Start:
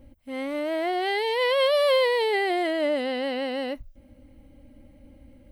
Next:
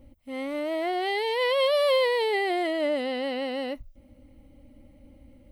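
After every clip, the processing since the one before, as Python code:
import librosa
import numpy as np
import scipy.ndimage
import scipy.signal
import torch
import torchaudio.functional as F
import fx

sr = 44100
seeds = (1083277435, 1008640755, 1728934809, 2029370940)

y = fx.notch(x, sr, hz=1600.0, q=9.9)
y = F.gain(torch.from_numpy(y), -1.5).numpy()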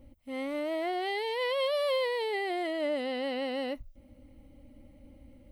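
y = fx.rider(x, sr, range_db=4, speed_s=2.0)
y = F.gain(torch.from_numpy(y), -5.5).numpy()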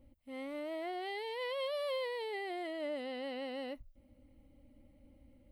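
y = fx.peak_eq(x, sr, hz=6100.0, db=-3.5, octaves=0.38)
y = F.gain(torch.from_numpy(y), -8.0).numpy()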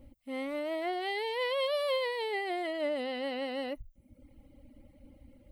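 y = fx.dereverb_blind(x, sr, rt60_s=0.82)
y = F.gain(torch.from_numpy(y), 8.0).numpy()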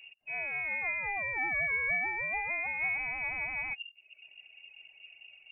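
y = fx.freq_invert(x, sr, carrier_hz=2800)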